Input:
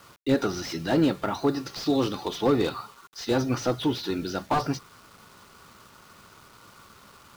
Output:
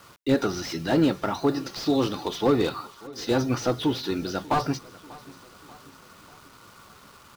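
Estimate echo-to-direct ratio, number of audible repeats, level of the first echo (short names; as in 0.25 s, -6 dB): -20.0 dB, 3, -21.5 dB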